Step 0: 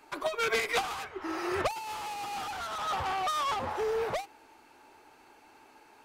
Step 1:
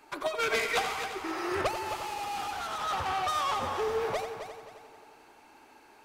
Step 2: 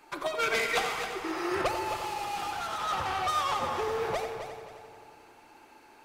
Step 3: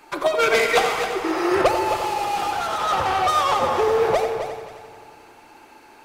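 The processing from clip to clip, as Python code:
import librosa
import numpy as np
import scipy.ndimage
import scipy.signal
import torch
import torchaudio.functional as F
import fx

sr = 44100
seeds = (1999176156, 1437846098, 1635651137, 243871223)

y1 = fx.echo_heads(x, sr, ms=88, heads='first and third', feedback_pct=53, wet_db=-10.0)
y2 = fx.room_shoebox(y1, sr, seeds[0], volume_m3=1900.0, walls='mixed', distance_m=0.82)
y3 = fx.dynamic_eq(y2, sr, hz=520.0, q=0.98, threshold_db=-44.0, ratio=4.0, max_db=6)
y3 = y3 * librosa.db_to_amplitude(7.5)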